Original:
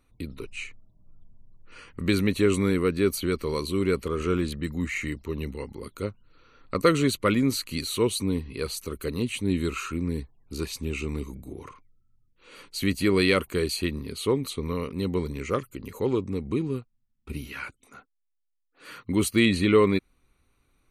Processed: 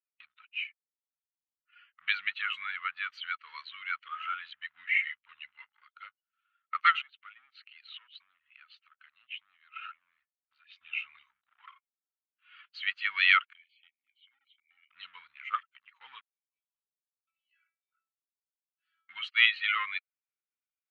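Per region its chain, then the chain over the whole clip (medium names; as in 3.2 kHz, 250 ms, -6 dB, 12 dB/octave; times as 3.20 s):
7.01–10.76 s: low-pass 3.5 kHz + compression 8:1, threshold -34 dBFS
11.58–12.66 s: treble shelf 2.8 kHz -7 dB + waveshaping leveller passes 2
13.53–14.90 s: vowel filter i + bass shelf 150 Hz -11 dB + compression 20:1, threshold -37 dBFS
16.21–19.09 s: compression 3:1, threshold -45 dBFS + resonant low-pass 4.9 kHz, resonance Q 2.8 + feedback comb 330 Hz, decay 0.47 s, mix 90%
whole clip: expander on every frequency bin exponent 1.5; waveshaping leveller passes 1; elliptic band-pass 1.3–3.3 kHz, stop band 60 dB; trim +4.5 dB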